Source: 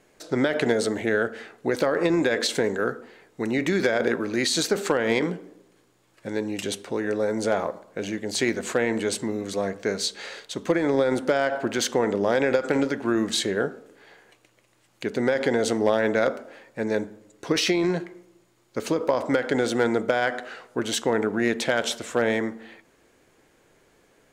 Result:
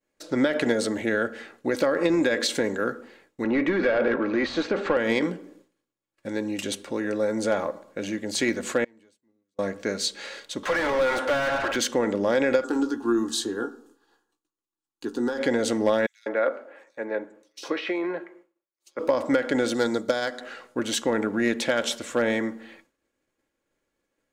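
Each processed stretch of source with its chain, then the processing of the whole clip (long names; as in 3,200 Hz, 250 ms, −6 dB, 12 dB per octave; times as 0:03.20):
0:03.44–0:04.97: mid-hump overdrive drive 18 dB, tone 4,200 Hz, clips at −10.5 dBFS + head-to-tape spacing loss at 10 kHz 35 dB
0:08.84–0:09.59: leveller curve on the samples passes 1 + gate with flip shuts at −23 dBFS, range −33 dB
0:10.63–0:11.76: high-pass filter 750 Hz + mid-hump overdrive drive 30 dB, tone 1,400 Hz, clips at −15 dBFS
0:12.64–0:15.38: phaser with its sweep stopped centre 580 Hz, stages 6 + double-tracking delay 17 ms −9 dB
0:16.06–0:18.99: three-way crossover with the lows and the highs turned down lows −22 dB, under 330 Hz, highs −14 dB, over 2,600 Hz + multiband delay without the direct sound highs, lows 200 ms, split 4,100 Hz
0:19.74–0:20.41: high shelf with overshoot 3,300 Hz +6 dB, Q 3 + expander for the loud parts, over −30 dBFS
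whole clip: downward expander −48 dBFS; parametric band 790 Hz −3.5 dB 0.29 octaves; comb filter 3.6 ms, depth 38%; level −1 dB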